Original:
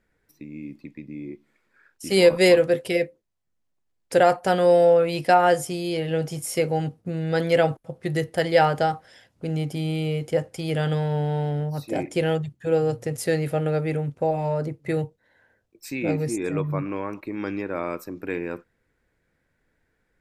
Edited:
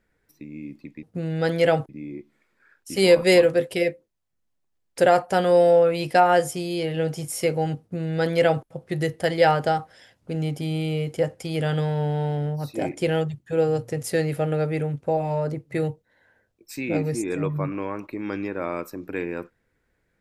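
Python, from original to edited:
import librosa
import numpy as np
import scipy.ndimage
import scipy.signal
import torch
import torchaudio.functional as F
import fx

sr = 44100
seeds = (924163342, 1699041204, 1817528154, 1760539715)

y = fx.edit(x, sr, fx.duplicate(start_s=6.94, length_s=0.86, to_s=1.03), tone=tone)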